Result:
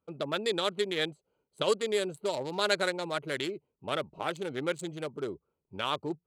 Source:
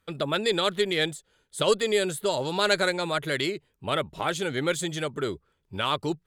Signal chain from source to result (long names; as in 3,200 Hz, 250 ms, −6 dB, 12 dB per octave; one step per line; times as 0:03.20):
adaptive Wiener filter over 25 samples
high-pass filter 220 Hz 6 dB per octave
level −3.5 dB